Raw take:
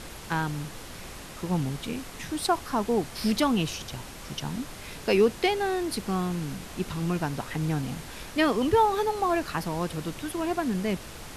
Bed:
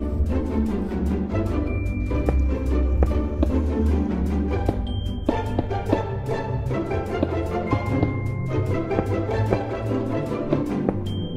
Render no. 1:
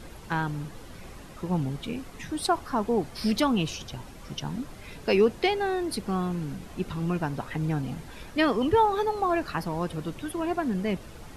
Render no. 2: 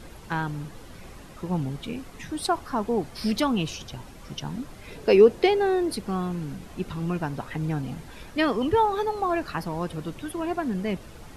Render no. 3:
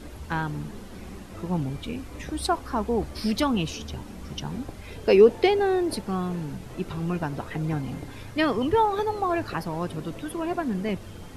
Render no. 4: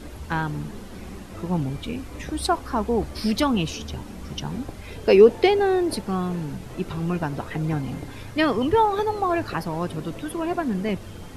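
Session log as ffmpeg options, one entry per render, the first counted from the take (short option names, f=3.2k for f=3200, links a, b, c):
-af "afftdn=nr=9:nf=-42"
-filter_complex "[0:a]asettb=1/sr,asplit=3[a][b][c];[a]atrim=end=4.874[d];[b]atrim=start=4.87:end=5.93,asetpts=PTS-STARTPTS,afade=t=in:d=0.004:c=qsin,afade=t=out:st=1.056:d=0.004:c=qsin,equalizer=f=440:t=o:w=1:g=7[e];[c]atrim=start=5.926[f];[d][e]acrossfade=d=0.004:c1=hsin:c2=qsin[g];[g][f]acrossfade=d=0.004:c1=qsin:c2=hsin"
-filter_complex "[1:a]volume=-18.5dB[a];[0:a][a]amix=inputs=2:normalize=0"
-af "volume=2.5dB"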